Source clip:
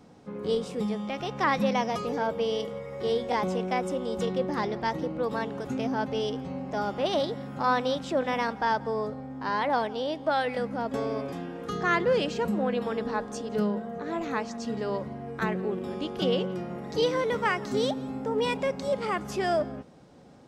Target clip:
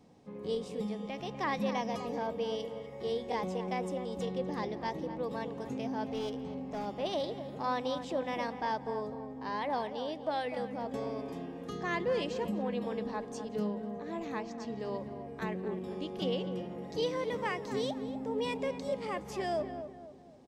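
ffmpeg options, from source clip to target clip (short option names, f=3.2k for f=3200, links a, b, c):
-filter_complex "[0:a]equalizer=f=1.4k:t=o:w=0.24:g=-12,asettb=1/sr,asplit=3[a][b][c];[a]atrim=end=6.064[d];[b]atrim=start=6.06:end=6.86,asetpts=PTS-STARTPTS,afade=t=in:d=0.004:c=qsin,afade=t=out:st=0.796:d=0.004:c=qsin,aeval=exprs='clip(val(0),-1,0.0447)':c=same[e];[c]atrim=start=6.856[f];[d][e]acrossfade=d=0.004:c1=hsin:c2=qsin[g];[g][f]acrossfade=d=0.004:c1=qsin:c2=hsin,asettb=1/sr,asplit=3[h][i][j];[h]atrim=end=14.374[k];[i]atrim=start=14.37:end=14.8,asetpts=PTS-STARTPTS,afade=t=in:d=0.004:c=qsin,afade=t=out:st=0.426:d=0.004:c=qsin,adynamicsmooth=sensitivity=5:basefreq=6.7k[l];[j]atrim=start=14.796[m];[k][l]acrossfade=d=0.004:c1=hsin:c2=qsin[n];[n][m]acrossfade=d=0.004:c1=qsin:c2=hsin,asplit=2[o][p];[p]adelay=248,lowpass=f=1.5k:p=1,volume=-9dB,asplit=2[q][r];[r]adelay=248,lowpass=f=1.5k:p=1,volume=0.42,asplit=2[s][t];[t]adelay=248,lowpass=f=1.5k:p=1,volume=0.42,asplit=2[u][v];[v]adelay=248,lowpass=f=1.5k:p=1,volume=0.42,asplit=2[w][x];[x]adelay=248,lowpass=f=1.5k:p=1,volume=0.42[y];[q][s][u][w][y]amix=inputs=5:normalize=0[z];[o][z]amix=inputs=2:normalize=0,volume=-7dB"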